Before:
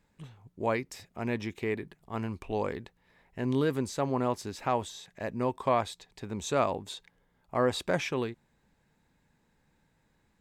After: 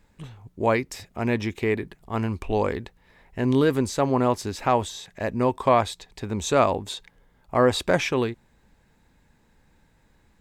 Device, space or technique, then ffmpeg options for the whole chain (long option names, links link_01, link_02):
low shelf boost with a cut just above: -af "lowshelf=frequency=93:gain=7.5,equalizer=frequency=150:width_type=o:width=0.67:gain=-4,volume=7.5dB"